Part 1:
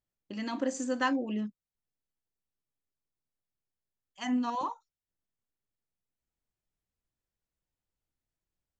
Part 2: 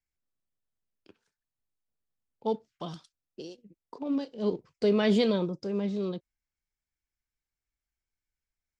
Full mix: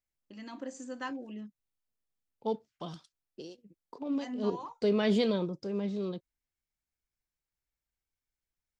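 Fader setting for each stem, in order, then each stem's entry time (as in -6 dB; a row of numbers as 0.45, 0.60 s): -9.5, -3.0 dB; 0.00, 0.00 s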